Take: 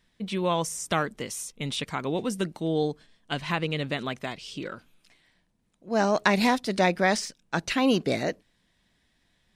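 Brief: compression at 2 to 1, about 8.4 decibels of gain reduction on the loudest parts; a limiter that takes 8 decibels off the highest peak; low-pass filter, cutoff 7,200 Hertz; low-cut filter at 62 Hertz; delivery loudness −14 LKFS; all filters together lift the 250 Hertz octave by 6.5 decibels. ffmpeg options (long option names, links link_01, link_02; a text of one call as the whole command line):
ffmpeg -i in.wav -af "highpass=62,lowpass=7200,equalizer=frequency=250:width_type=o:gain=8,acompressor=threshold=-28dB:ratio=2,volume=17dB,alimiter=limit=-2.5dB:level=0:latency=1" out.wav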